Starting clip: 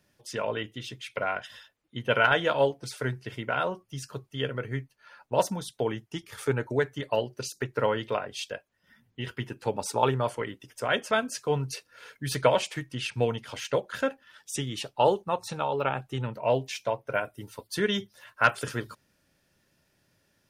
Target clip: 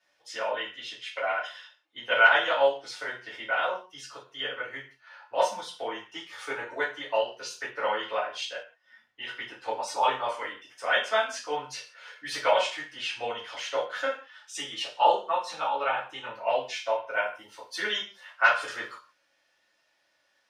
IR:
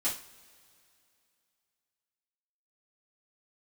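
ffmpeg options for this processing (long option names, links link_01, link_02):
-filter_complex "[0:a]acrossover=split=530 6100:gain=0.0631 1 0.141[link_01][link_02][link_03];[link_01][link_02][link_03]amix=inputs=3:normalize=0[link_04];[1:a]atrim=start_sample=2205,afade=type=out:start_time=0.24:duration=0.01,atrim=end_sample=11025[link_05];[link_04][link_05]afir=irnorm=-1:irlink=0,volume=-2dB"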